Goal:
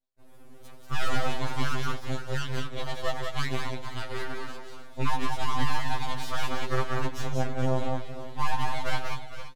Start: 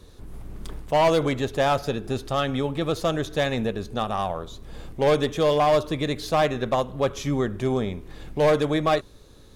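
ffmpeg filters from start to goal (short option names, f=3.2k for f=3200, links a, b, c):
-filter_complex "[0:a]agate=range=-35dB:threshold=-41dB:ratio=16:detection=peak,highpass=f=100:w=0.5412,highpass=f=100:w=1.3066,asettb=1/sr,asplit=3[a][b][c];[a]atrim=end=1.894[d];[b]atrim=start=1.89:end=4.23,asetpts=PTS-STARTPTS,afade=t=in:d=0.004:c=qsin,afade=t=out:st=2.336:d=0.004:c=qsin,aeval=exprs='0.316*(cos(1*acos(clip(val(0)/0.316,-1,1)))-cos(1*PI/2))+0.0282*(cos(7*acos(clip(val(0)/0.316,-1,1)))-cos(7*PI/2))':c=same[e];[c]atrim=start=4.226[f];[d][e]acrossfade=d=0.004:c1=hsin:c2=qsin[g];[g][f]acrossfade=d=0.004:c1=qsin:c2=hsin,aecho=1:1:88|164|189|458|525:0.15|0.266|0.631|0.266|0.188,aeval=exprs='abs(val(0))':c=same,afftfilt=real='re*2.45*eq(mod(b,6),0)':imag='im*2.45*eq(mod(b,6),0)':win_size=2048:overlap=0.75,volume=-4dB"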